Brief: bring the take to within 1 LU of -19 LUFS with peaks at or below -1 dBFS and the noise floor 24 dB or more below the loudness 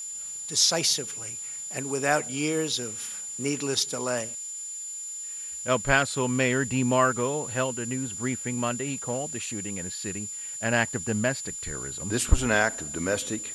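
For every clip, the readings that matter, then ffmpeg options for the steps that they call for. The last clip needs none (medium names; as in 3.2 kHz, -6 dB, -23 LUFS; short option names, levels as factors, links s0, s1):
steady tone 7.1 kHz; tone level -34 dBFS; noise floor -37 dBFS; noise floor target -51 dBFS; loudness -27.0 LUFS; peak level -5.0 dBFS; loudness target -19.0 LUFS
-> -af "bandreject=f=7100:w=30"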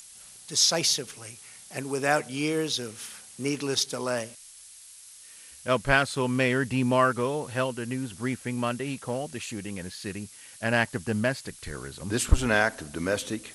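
steady tone not found; noise floor -49 dBFS; noise floor target -52 dBFS
-> -af "afftdn=nr=6:nf=-49"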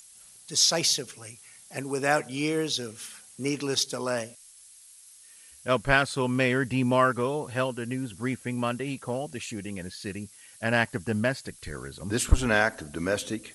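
noise floor -52 dBFS; loudness -27.5 LUFS; peak level -5.5 dBFS; loudness target -19.0 LUFS
-> -af "volume=2.66,alimiter=limit=0.891:level=0:latency=1"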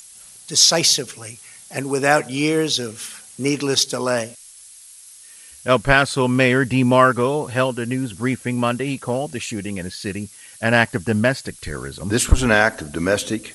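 loudness -19.0 LUFS; peak level -1.0 dBFS; noise floor -44 dBFS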